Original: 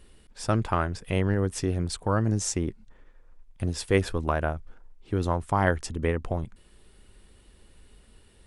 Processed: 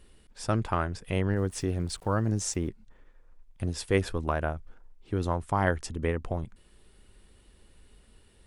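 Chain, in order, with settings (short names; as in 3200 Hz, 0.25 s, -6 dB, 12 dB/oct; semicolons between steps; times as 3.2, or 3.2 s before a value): 1.36–2.68 sample gate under -48.5 dBFS; gain -2.5 dB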